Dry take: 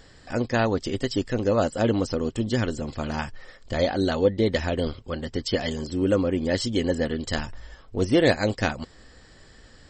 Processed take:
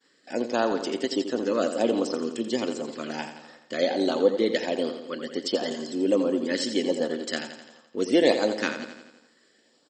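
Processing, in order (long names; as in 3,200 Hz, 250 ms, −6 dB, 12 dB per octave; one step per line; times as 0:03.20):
high-pass filter 240 Hz 24 dB per octave
downward expander −47 dBFS
auto-filter notch saw up 1.4 Hz 580–2,700 Hz
on a send: repeating echo 85 ms, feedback 57%, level −9.5 dB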